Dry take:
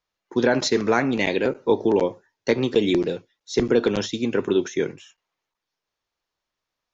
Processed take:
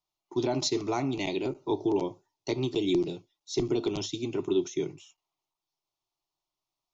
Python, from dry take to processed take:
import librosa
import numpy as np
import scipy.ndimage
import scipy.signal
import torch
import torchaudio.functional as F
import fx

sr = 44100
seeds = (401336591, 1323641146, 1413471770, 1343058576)

y = fx.dynamic_eq(x, sr, hz=860.0, q=0.87, threshold_db=-34.0, ratio=4.0, max_db=-4)
y = fx.fixed_phaser(y, sr, hz=330.0, stages=8)
y = y * librosa.db_to_amplitude(-3.0)